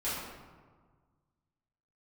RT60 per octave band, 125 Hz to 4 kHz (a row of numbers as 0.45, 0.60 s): 2.2, 1.8, 1.6, 1.6, 1.1, 0.80 s